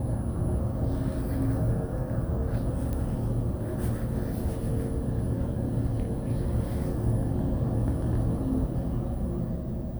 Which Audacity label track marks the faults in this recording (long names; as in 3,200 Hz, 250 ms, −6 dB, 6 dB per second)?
2.930000	2.930000	click −20 dBFS